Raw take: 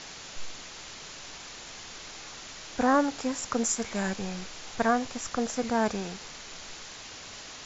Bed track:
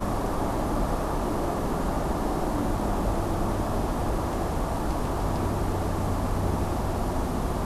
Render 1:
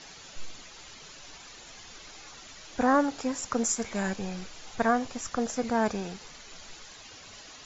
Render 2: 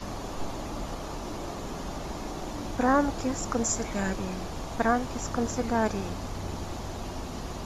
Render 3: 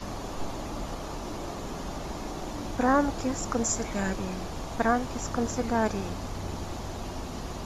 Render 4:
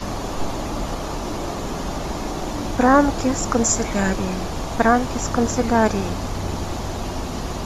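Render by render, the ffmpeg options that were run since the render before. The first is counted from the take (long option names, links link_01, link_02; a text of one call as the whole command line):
ffmpeg -i in.wav -af "afftdn=noise_reduction=8:noise_floor=-44" out.wav
ffmpeg -i in.wav -i bed.wav -filter_complex "[1:a]volume=-9dB[link_01];[0:a][link_01]amix=inputs=2:normalize=0" out.wav
ffmpeg -i in.wav -af anull out.wav
ffmpeg -i in.wav -af "volume=9dB,alimiter=limit=-3dB:level=0:latency=1" out.wav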